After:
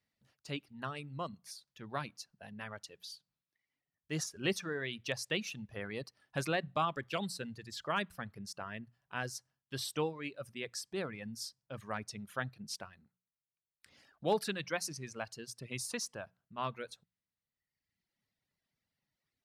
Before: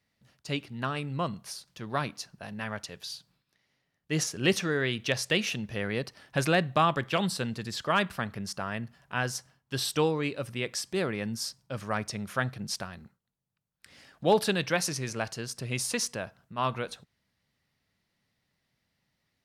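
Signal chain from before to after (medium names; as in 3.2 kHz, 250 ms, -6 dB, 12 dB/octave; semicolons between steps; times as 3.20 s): hum notches 60/120/180 Hz; reverb removal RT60 1.3 s; trim -8 dB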